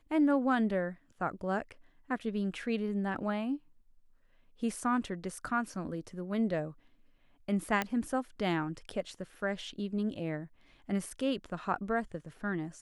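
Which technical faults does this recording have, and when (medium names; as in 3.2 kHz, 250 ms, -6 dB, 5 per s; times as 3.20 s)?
7.82 s: pop -16 dBFS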